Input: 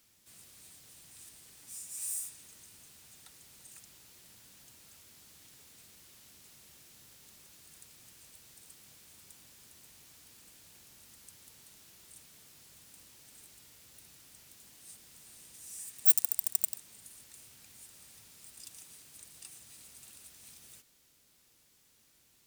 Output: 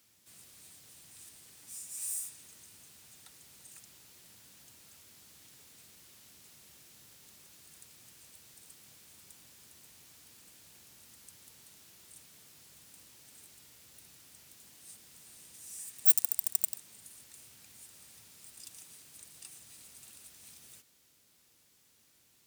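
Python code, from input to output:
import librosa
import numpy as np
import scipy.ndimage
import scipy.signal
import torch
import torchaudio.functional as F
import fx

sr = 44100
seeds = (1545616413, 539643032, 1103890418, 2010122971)

y = scipy.signal.sosfilt(scipy.signal.butter(2, 61.0, 'highpass', fs=sr, output='sos'), x)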